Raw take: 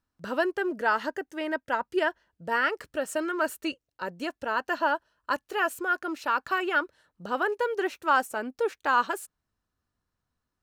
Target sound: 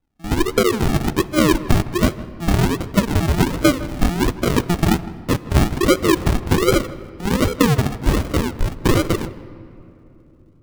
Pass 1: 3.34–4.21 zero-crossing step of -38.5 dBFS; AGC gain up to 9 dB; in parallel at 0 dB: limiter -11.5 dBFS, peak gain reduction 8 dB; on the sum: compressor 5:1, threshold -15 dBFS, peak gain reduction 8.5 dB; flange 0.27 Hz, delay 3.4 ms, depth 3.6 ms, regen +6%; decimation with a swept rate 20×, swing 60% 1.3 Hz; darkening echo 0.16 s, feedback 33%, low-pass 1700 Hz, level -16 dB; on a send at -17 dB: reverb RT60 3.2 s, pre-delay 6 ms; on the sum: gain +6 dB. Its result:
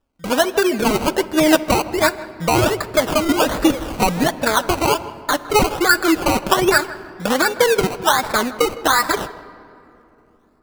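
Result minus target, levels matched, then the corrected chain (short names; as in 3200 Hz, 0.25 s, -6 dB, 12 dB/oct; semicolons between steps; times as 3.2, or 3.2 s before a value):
decimation with a swept rate: distortion -25 dB
3.34–4.21 zero-crossing step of -38.5 dBFS; AGC gain up to 9 dB; in parallel at 0 dB: limiter -11.5 dBFS, peak gain reduction 8 dB; on the sum: compressor 5:1, threshold -15 dBFS, peak gain reduction 8.5 dB; flange 0.27 Hz, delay 3.4 ms, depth 3.6 ms, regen +6%; decimation with a swept rate 69×, swing 60% 1.3 Hz; darkening echo 0.16 s, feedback 33%, low-pass 1700 Hz, level -16 dB; on a send at -17 dB: reverb RT60 3.2 s, pre-delay 6 ms; on the sum: gain +6 dB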